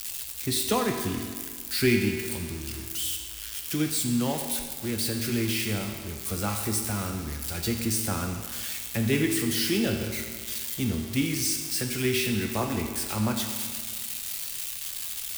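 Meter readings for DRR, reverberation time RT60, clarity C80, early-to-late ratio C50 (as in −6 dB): 2.5 dB, 1.8 s, 6.0 dB, 5.0 dB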